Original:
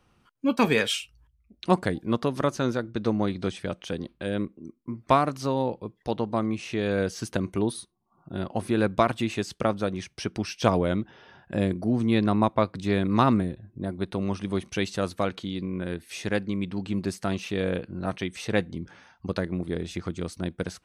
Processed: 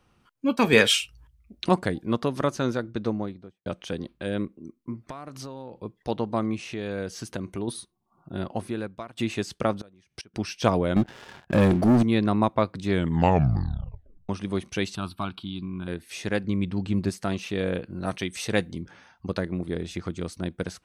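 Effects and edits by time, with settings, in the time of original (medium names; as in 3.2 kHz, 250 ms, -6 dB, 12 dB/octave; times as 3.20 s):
0.73–1.69 s: gain +6.5 dB
2.86–3.66 s: studio fade out
5.05–5.76 s: compression 12:1, threshold -34 dBFS
6.62–7.68 s: compression 1.5:1, threshold -36 dBFS
8.51–9.17 s: fade out quadratic, to -20 dB
9.78–10.34 s: inverted gate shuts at -26 dBFS, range -25 dB
10.96–12.03 s: waveshaping leveller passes 3
12.88 s: tape stop 1.41 s
14.95–15.88 s: static phaser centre 1.9 kHz, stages 6
16.44–17.10 s: bass shelf 110 Hz +12 dB
17.90–18.82 s: treble shelf 4.6 kHz +9.5 dB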